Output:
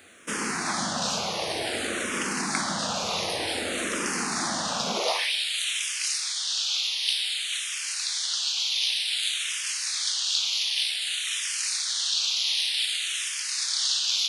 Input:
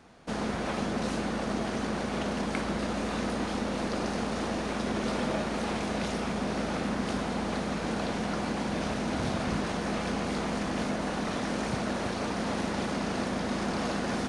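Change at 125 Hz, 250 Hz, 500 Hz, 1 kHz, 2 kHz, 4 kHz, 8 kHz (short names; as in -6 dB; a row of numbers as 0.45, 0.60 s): -9.5, -8.5, -4.0, -0.5, +5.0, +16.0, +16.0 dB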